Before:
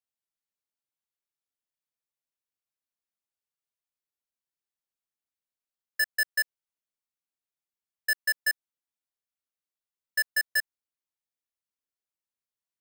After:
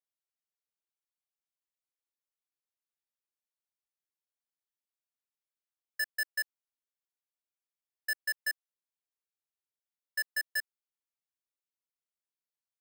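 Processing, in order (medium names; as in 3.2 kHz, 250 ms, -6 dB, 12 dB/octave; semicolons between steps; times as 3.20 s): steep high-pass 310 Hz; trim -6.5 dB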